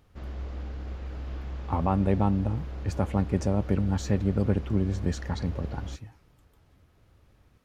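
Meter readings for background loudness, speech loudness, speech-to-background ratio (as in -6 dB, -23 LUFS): -38.5 LUFS, -28.5 LUFS, 10.0 dB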